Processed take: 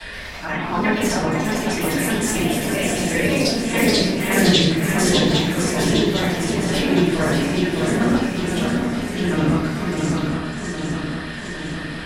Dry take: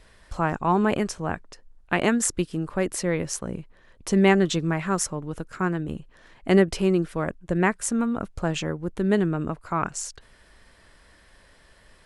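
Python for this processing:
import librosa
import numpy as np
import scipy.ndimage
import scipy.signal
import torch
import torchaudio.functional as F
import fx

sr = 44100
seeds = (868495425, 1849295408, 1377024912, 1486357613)

p1 = fx.local_reverse(x, sr, ms=47.0)
p2 = fx.highpass(p1, sr, hz=68.0, slope=6)
p3 = fx.band_shelf(p2, sr, hz=2700.0, db=9.0, octaves=1.7)
p4 = fx.notch(p3, sr, hz=2100.0, q=13.0)
p5 = fx.auto_swell(p4, sr, attack_ms=139.0)
p6 = fx.level_steps(p5, sr, step_db=11)
p7 = fx.auto_swell(p6, sr, attack_ms=306.0)
p8 = p7 + fx.echo_swing(p7, sr, ms=807, ratio=3, feedback_pct=51, wet_db=-5.0, dry=0)
p9 = fx.echo_pitch(p8, sr, ms=122, semitones=3, count=2, db_per_echo=-3.0)
p10 = fx.room_shoebox(p9, sr, seeds[0], volume_m3=110.0, walls='mixed', distance_m=3.9)
y = fx.band_squash(p10, sr, depth_pct=40)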